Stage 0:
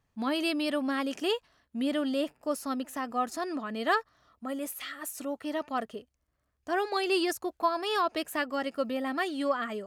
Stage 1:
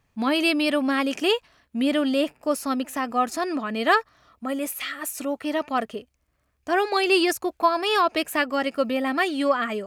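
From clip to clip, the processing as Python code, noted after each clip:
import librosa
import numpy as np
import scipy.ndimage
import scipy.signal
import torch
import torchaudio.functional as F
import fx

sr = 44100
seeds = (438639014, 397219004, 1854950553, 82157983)

y = fx.peak_eq(x, sr, hz=2400.0, db=5.5, octaves=0.36)
y = y * 10.0 ** (7.0 / 20.0)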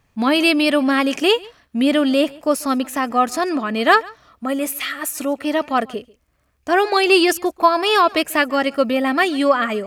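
y = x + 10.0 ** (-23.5 / 20.0) * np.pad(x, (int(141 * sr / 1000.0), 0))[:len(x)]
y = y * 10.0 ** (6.0 / 20.0)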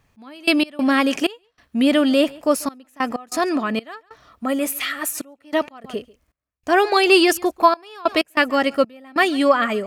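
y = fx.step_gate(x, sr, bpm=95, pattern='x..x.xxx..xxxxxx', floor_db=-24.0, edge_ms=4.5)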